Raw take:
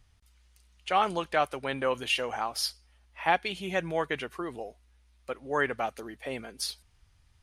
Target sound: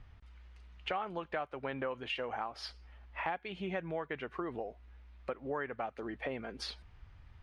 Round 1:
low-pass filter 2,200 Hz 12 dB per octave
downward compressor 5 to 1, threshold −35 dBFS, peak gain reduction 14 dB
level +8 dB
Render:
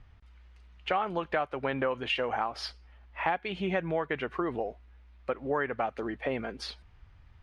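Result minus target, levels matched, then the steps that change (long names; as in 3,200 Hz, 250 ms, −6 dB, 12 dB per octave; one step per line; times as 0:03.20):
downward compressor: peak gain reduction −7.5 dB
change: downward compressor 5 to 1, threshold −44.5 dBFS, peak gain reduction 21.5 dB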